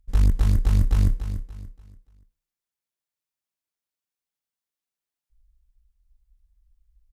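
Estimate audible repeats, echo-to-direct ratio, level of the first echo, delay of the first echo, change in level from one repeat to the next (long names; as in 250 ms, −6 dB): 3, −9.5 dB, −10.0 dB, 289 ms, −9.5 dB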